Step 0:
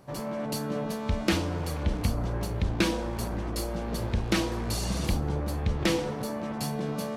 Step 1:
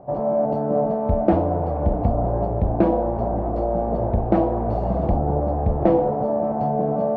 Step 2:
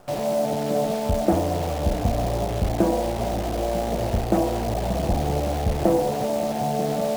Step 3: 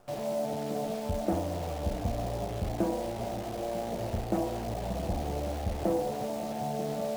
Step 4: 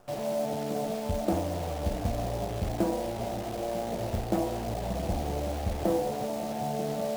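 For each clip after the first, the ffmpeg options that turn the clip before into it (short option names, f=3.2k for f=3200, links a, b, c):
-af "lowpass=f=700:t=q:w=4.5,bandreject=f=157.1:t=h:w=4,bandreject=f=314.2:t=h:w=4,bandreject=f=471.3:t=h:w=4,bandreject=f=628.4:t=h:w=4,bandreject=f=785.5:t=h:w=4,bandreject=f=942.6:t=h:w=4,bandreject=f=1.0997k:t=h:w=4,bandreject=f=1.2568k:t=h:w=4,bandreject=f=1.4139k:t=h:w=4,bandreject=f=1.571k:t=h:w=4,bandreject=f=1.7281k:t=h:w=4,bandreject=f=1.8852k:t=h:w=4,bandreject=f=2.0423k:t=h:w=4,bandreject=f=2.1994k:t=h:w=4,bandreject=f=2.3565k:t=h:w=4,bandreject=f=2.5136k:t=h:w=4,bandreject=f=2.6707k:t=h:w=4,bandreject=f=2.8278k:t=h:w=4,bandreject=f=2.9849k:t=h:w=4,bandreject=f=3.142k:t=h:w=4,bandreject=f=3.2991k:t=h:w=4,bandreject=f=3.4562k:t=h:w=4,bandreject=f=3.6133k:t=h:w=4,bandreject=f=3.7704k:t=h:w=4,bandreject=f=3.9275k:t=h:w=4,bandreject=f=4.0846k:t=h:w=4,bandreject=f=4.2417k:t=h:w=4,bandreject=f=4.3988k:t=h:w=4,bandreject=f=4.5559k:t=h:w=4,bandreject=f=4.713k:t=h:w=4,bandreject=f=4.8701k:t=h:w=4,volume=6dB"
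-af "acrusher=bits=6:dc=4:mix=0:aa=0.000001,volume=-2.5dB"
-af "flanger=delay=8.6:depth=2:regen=-63:speed=0.28:shape=triangular,volume=-5dB"
-af "acrusher=bits=5:mode=log:mix=0:aa=0.000001,volume=1.5dB"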